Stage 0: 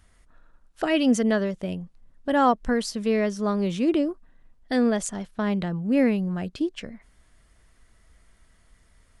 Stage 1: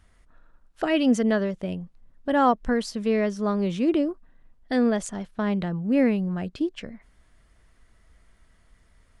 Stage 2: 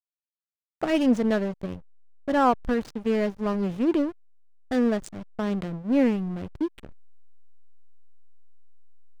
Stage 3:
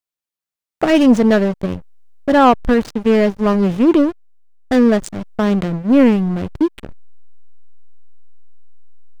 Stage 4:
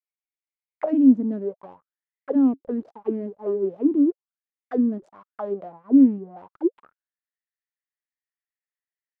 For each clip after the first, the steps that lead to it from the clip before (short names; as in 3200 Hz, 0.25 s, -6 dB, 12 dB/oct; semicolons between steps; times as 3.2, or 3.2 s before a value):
high shelf 5100 Hz -6.5 dB
backlash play -25 dBFS
sample leveller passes 1; gain +8 dB
auto-wah 270–2200 Hz, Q 9.3, down, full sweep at -9 dBFS